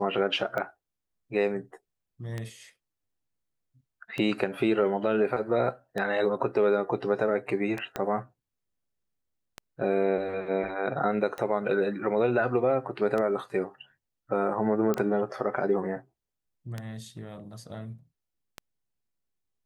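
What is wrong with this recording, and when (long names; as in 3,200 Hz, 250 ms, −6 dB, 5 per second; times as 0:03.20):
scratch tick 33 1/3 rpm −19 dBFS
0:07.96: click −16 dBFS
0:14.94: click −15 dBFS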